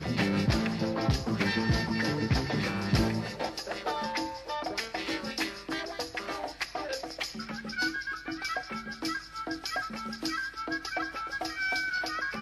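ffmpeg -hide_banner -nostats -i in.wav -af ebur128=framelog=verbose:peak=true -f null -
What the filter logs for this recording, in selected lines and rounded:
Integrated loudness:
  I:         -31.8 LUFS
  Threshold: -41.8 LUFS
Loudness range:
  LRA:         5.3 LU
  Threshold: -52.4 LUFS
  LRA low:   -34.5 LUFS
  LRA high:  -29.1 LUFS
True peak:
  Peak:      -12.9 dBFS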